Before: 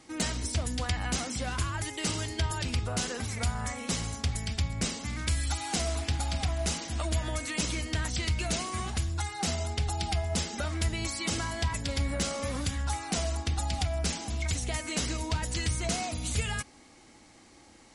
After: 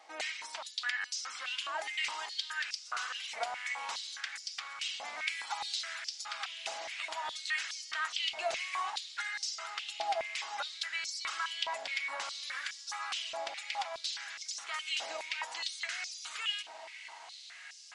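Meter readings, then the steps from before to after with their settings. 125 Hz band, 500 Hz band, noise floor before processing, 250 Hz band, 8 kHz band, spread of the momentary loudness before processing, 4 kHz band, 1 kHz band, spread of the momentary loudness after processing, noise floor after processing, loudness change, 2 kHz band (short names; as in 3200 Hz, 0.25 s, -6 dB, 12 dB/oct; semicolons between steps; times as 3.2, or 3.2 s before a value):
under -40 dB, -7.5 dB, -56 dBFS, under -30 dB, -9.0 dB, 2 LU, -0.5 dB, -1.5 dB, 5 LU, -51 dBFS, -5.0 dB, +1.0 dB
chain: tilt +4.5 dB/oct; compressor 2:1, threshold -26 dBFS, peak gain reduction 5.5 dB; tape spacing loss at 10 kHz 31 dB; diffused feedback echo 1.505 s, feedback 40%, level -12 dB; stepped high-pass 4.8 Hz 690–5300 Hz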